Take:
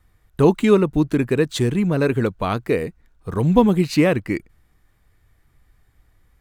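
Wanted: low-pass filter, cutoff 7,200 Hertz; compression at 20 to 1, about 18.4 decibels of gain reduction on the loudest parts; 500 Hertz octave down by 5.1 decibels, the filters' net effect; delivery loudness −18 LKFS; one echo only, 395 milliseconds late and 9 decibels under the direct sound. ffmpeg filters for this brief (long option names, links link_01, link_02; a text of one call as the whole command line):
ffmpeg -i in.wav -af "lowpass=7200,equalizer=frequency=500:width_type=o:gain=-6.5,acompressor=threshold=-30dB:ratio=20,aecho=1:1:395:0.355,volume=17.5dB" out.wav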